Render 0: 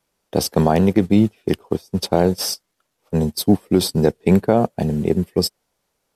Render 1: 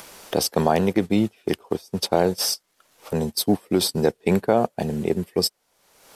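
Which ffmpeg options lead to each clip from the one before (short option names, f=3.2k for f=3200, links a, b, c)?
-af "lowshelf=f=290:g=-10,acompressor=mode=upward:threshold=-21dB:ratio=2.5"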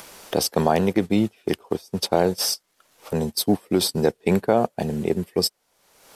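-af anull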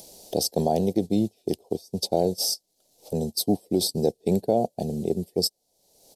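-af "firequalizer=gain_entry='entry(720,0);entry(1200,-28);entry(4100,1)':delay=0.05:min_phase=1,volume=-3dB"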